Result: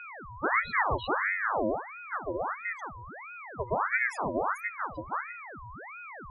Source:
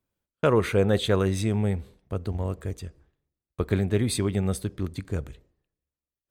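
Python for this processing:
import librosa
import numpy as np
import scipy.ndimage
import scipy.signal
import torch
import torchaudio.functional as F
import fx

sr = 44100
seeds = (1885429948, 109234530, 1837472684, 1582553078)

y = fx.spec_topn(x, sr, count=4)
y = y + 10.0 ** (-38.0 / 20.0) * np.sin(2.0 * np.pi * 540.0 * np.arange(len(y)) / sr)
y = fx.ring_lfo(y, sr, carrier_hz=1200.0, swing_pct=65, hz=1.5)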